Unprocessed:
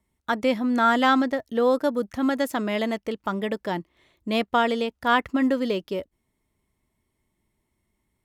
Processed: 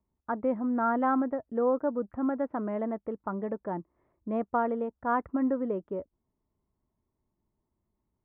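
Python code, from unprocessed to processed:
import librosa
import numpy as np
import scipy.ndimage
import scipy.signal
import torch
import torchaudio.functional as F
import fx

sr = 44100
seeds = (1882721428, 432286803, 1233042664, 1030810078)

y = scipy.signal.sosfilt(scipy.signal.butter(4, 1300.0, 'lowpass', fs=sr, output='sos'), x)
y = y * librosa.db_to_amplitude(-5.5)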